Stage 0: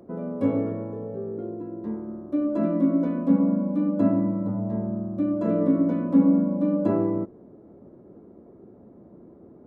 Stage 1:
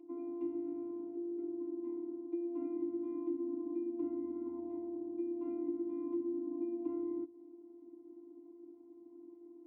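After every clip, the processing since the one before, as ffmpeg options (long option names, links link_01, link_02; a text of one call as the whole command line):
ffmpeg -i in.wav -filter_complex "[0:a]afftfilt=real='hypot(re,im)*cos(PI*b)':imag='0':win_size=512:overlap=0.75,acrossover=split=130[link_01][link_02];[link_02]acompressor=threshold=-34dB:ratio=6[link_03];[link_01][link_03]amix=inputs=2:normalize=0,asplit=3[link_04][link_05][link_06];[link_04]bandpass=frequency=300:width_type=q:width=8,volume=0dB[link_07];[link_05]bandpass=frequency=870:width_type=q:width=8,volume=-6dB[link_08];[link_06]bandpass=frequency=2240:width_type=q:width=8,volume=-9dB[link_09];[link_07][link_08][link_09]amix=inputs=3:normalize=0,volume=5.5dB" out.wav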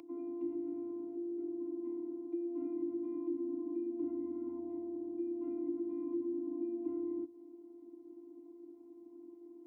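ffmpeg -i in.wav -filter_complex "[0:a]acrossover=split=140|480[link_01][link_02][link_03];[link_03]alimiter=level_in=29.5dB:limit=-24dB:level=0:latency=1:release=12,volume=-29.5dB[link_04];[link_01][link_02][link_04]amix=inputs=3:normalize=0,acompressor=mode=upward:threshold=-53dB:ratio=2.5,volume=1dB" out.wav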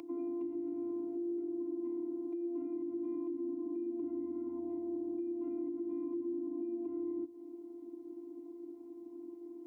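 ffmpeg -i in.wav -af "alimiter=level_in=13dB:limit=-24dB:level=0:latency=1:release=252,volume=-13dB,volume=5.5dB" out.wav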